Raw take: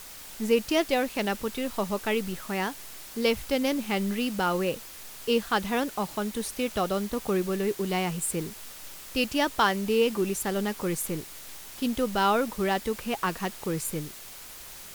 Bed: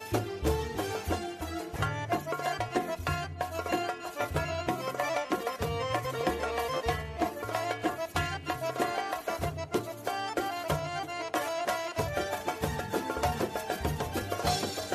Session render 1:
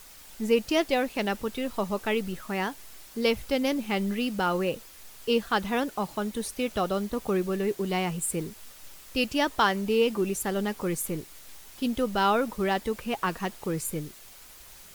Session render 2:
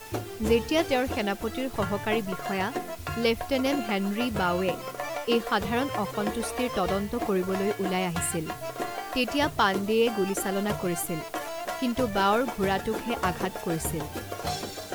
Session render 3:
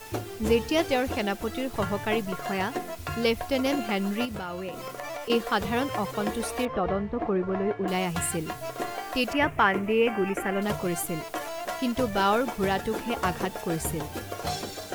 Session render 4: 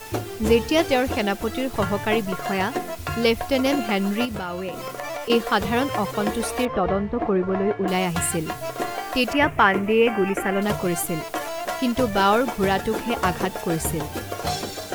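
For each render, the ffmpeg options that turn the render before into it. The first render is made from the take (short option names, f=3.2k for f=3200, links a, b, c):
-af "afftdn=nr=6:nf=-44"
-filter_complex "[1:a]volume=-2.5dB[a];[0:a][a]amix=inputs=2:normalize=0"
-filter_complex "[0:a]asettb=1/sr,asplit=3[a][b][c];[a]atrim=end=4.254[d];[b]atrim=start=4.25:end=5.3,asetpts=PTS-STARTPTS,afade=t=in:d=0.004:c=qsin,afade=t=out:st=1.046:d=0.004:c=qsin,acompressor=threshold=-31dB:ratio=6:attack=3.2:release=140:knee=1:detection=peak[e];[c]atrim=start=5.296[f];[d][e]acrossfade=d=0.004:c1=hsin:c2=qsin[g];[g][f]acrossfade=d=0.004:c1=qsin:c2=hsin,asettb=1/sr,asplit=3[h][i][j];[h]atrim=end=6.654[k];[i]atrim=start=6.65:end=7.88,asetpts=PTS-STARTPTS,afade=t=in:d=0.004:c=qsin,afade=t=out:st=1.226:d=0.004:c=qsin,lowpass=1.7k[l];[j]atrim=start=7.876[m];[k][l]acrossfade=d=0.004:c1=hsin:c2=qsin[n];[n][m]acrossfade=d=0.004:c1=qsin:c2=hsin,asettb=1/sr,asplit=3[o][p][q];[o]atrim=end=9.334[r];[p]atrim=start=9.33:end=10.62,asetpts=PTS-STARTPTS,afade=t=in:d=0.004:c=qsin,afade=t=out:st=1.286:d=0.004:c=qsin,highshelf=f=3.1k:t=q:w=3:g=-9.5[s];[q]atrim=start=10.616[t];[r][s]acrossfade=d=0.004:c1=hsin:c2=qsin[u];[u][t]acrossfade=d=0.004:c1=qsin:c2=hsin"
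-af "volume=5dB"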